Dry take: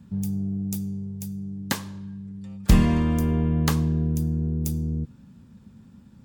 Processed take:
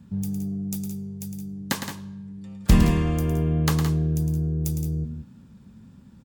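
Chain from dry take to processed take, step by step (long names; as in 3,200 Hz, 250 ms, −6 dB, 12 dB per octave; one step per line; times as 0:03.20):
multi-tap delay 109/168/182 ms −8.5/−10.5/−14.5 dB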